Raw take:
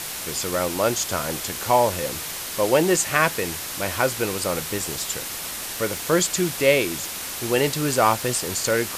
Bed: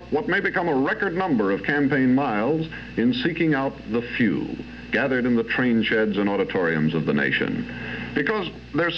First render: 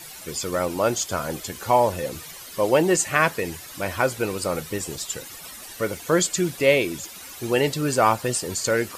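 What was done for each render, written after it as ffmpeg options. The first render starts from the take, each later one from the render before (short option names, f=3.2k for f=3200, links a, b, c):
-af "afftdn=nr=13:nf=-32"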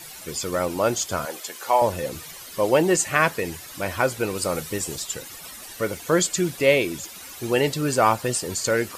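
-filter_complex "[0:a]asettb=1/sr,asplit=3[a][b][c];[a]atrim=end=1.254[d];[b]atrim=start=1.25:end=1.82,asetpts=PTS-STARTPTS,afade=t=in:d=0.004:c=qsin,afade=t=out:st=0.566:d=0.004:c=qsin,highpass=500[e];[c]atrim=start=1.816[f];[d][e]acrossfade=d=0.004:c1=hsin:c2=qsin[g];[g][f]acrossfade=d=0.004:c1=qsin:c2=hsin,asettb=1/sr,asplit=3[h][i][j];[h]atrim=end=4.354[k];[i]atrim=start=4.35:end=5,asetpts=PTS-STARTPTS,afade=t=in:d=0.004:c=qsin,afade=t=out:st=0.646:d=0.004:c=qsin,equalizer=f=9.2k:t=o:w=1.9:g=3.5[l];[j]atrim=start=4.996[m];[k][l]acrossfade=d=0.004:c1=hsin:c2=qsin[n];[n][m]acrossfade=d=0.004:c1=qsin:c2=hsin"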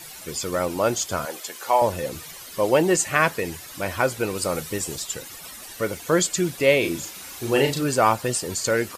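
-filter_complex "[0:a]asplit=3[a][b][c];[a]afade=t=out:st=6.82:d=0.02[d];[b]asplit=2[e][f];[f]adelay=36,volume=-4dB[g];[e][g]amix=inputs=2:normalize=0,afade=t=in:st=6.82:d=0.02,afade=t=out:st=7.83:d=0.02[h];[c]afade=t=in:st=7.83:d=0.02[i];[d][h][i]amix=inputs=3:normalize=0"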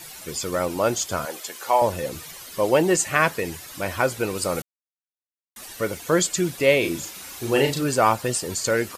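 -filter_complex "[0:a]asplit=3[a][b][c];[a]atrim=end=4.62,asetpts=PTS-STARTPTS,afade=t=out:st=4.616:d=0.004:c=hsin[d];[b]atrim=start=4.62:end=5.56,asetpts=PTS-STARTPTS,volume=0[e];[c]atrim=start=5.56,asetpts=PTS-STARTPTS,afade=t=in:d=0.004:c=hsin[f];[d][e][f]concat=n=3:v=0:a=1"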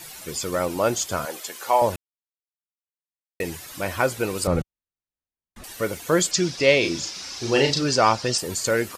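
-filter_complex "[0:a]asettb=1/sr,asplit=3[a][b][c];[a]atrim=end=4.474[d];[b]atrim=start=4.47:end=5.64,asetpts=PTS-STARTPTS,afade=t=in:d=0.004:c=qsin,afade=t=out:st=1.166:d=0.004:c=qsin,aemphasis=mode=reproduction:type=riaa[e];[c]atrim=start=5.636[f];[d][e]acrossfade=d=0.004:c1=hsin:c2=qsin[g];[g][f]acrossfade=d=0.004:c1=qsin:c2=hsin,asettb=1/sr,asplit=3[h][i][j];[h]atrim=end=6.314[k];[i]atrim=start=6.31:end=8.38,asetpts=PTS-STARTPTS,afade=t=in:d=0.004:c=qsin,afade=t=out:st=2.066:d=0.004:c=qsin,lowpass=f=5.3k:t=q:w=3.9[l];[j]atrim=start=8.376[m];[k][l]acrossfade=d=0.004:c1=hsin:c2=qsin[n];[n][m]acrossfade=d=0.004:c1=qsin:c2=hsin,asplit=3[o][p][q];[o]atrim=end=1.96,asetpts=PTS-STARTPTS,afade=t=out:st=1.956:d=0.004:c=hsin[r];[p]atrim=start=1.96:end=3.4,asetpts=PTS-STARTPTS,volume=0[s];[q]atrim=start=3.4,asetpts=PTS-STARTPTS,afade=t=in:d=0.004:c=hsin[t];[r][s][t]concat=n=3:v=0:a=1"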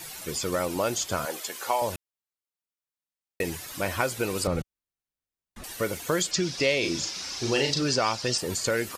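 -filter_complex "[0:a]acrossover=split=2200|5500[a][b][c];[a]acompressor=threshold=-24dB:ratio=4[d];[b]acompressor=threshold=-28dB:ratio=4[e];[c]acompressor=threshold=-33dB:ratio=4[f];[d][e][f]amix=inputs=3:normalize=0"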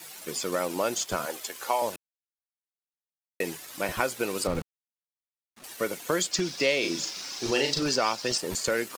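-filter_complex "[0:a]acrossover=split=150|1400[a][b][c];[a]acrusher=bits=3:dc=4:mix=0:aa=0.000001[d];[d][b][c]amix=inputs=3:normalize=0,aeval=exprs='sgn(val(0))*max(abs(val(0))-0.00473,0)':c=same"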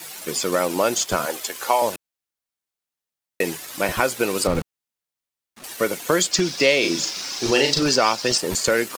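-af "volume=7.5dB,alimiter=limit=-3dB:level=0:latency=1"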